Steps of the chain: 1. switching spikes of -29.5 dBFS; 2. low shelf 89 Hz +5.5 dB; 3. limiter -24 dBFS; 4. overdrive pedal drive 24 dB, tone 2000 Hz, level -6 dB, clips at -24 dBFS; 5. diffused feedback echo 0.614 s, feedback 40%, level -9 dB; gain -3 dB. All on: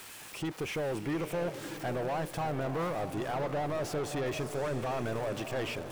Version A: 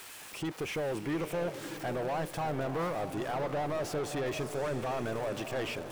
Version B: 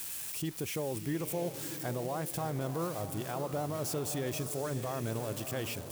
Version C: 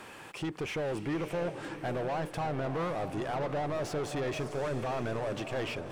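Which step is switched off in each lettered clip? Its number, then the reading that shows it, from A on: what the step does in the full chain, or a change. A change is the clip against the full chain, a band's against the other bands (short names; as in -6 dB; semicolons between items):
2, 125 Hz band -2.0 dB; 4, 8 kHz band +9.5 dB; 1, distortion -10 dB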